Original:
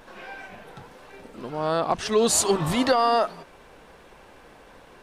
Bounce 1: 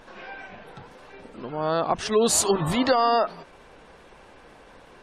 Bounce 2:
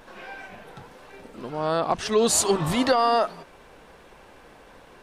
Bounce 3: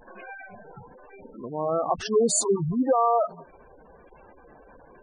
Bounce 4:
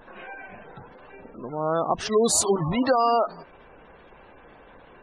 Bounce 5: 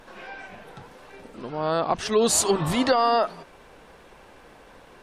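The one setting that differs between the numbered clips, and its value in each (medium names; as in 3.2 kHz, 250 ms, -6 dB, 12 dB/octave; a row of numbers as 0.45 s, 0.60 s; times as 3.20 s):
spectral gate, under each frame's peak: -35 dB, -60 dB, -10 dB, -20 dB, -45 dB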